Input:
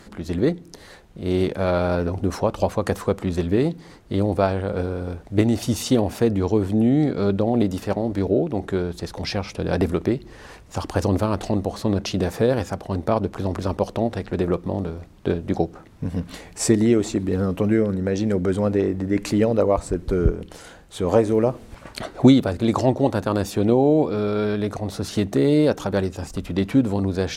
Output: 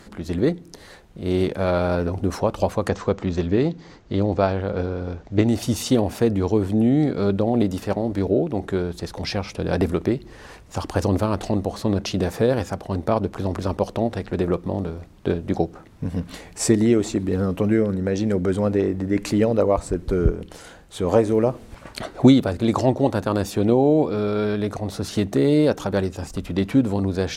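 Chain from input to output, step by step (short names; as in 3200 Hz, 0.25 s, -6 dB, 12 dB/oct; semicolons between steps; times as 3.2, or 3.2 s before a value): 2.88–5.46 steep low-pass 7200 Hz 48 dB/oct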